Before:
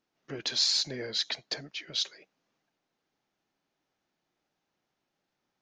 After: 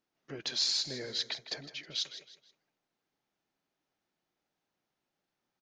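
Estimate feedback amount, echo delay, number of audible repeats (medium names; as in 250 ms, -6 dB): 34%, 159 ms, 3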